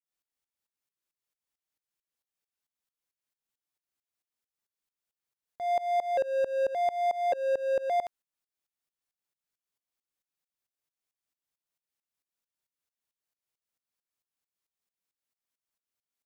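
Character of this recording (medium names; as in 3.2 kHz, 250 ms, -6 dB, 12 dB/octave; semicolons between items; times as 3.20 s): tremolo saw up 4.5 Hz, depth 95%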